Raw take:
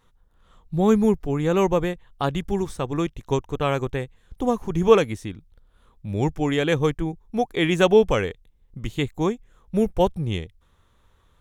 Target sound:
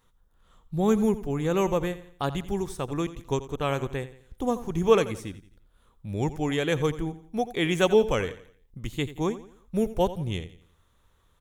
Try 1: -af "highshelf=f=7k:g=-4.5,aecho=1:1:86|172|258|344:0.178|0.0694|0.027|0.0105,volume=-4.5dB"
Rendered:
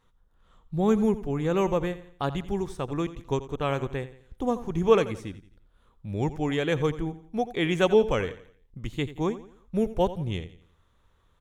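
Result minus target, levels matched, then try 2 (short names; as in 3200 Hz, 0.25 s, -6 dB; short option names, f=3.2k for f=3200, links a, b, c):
8000 Hz band -6.0 dB
-af "highshelf=f=7k:g=7.5,aecho=1:1:86|172|258|344:0.178|0.0694|0.027|0.0105,volume=-4.5dB"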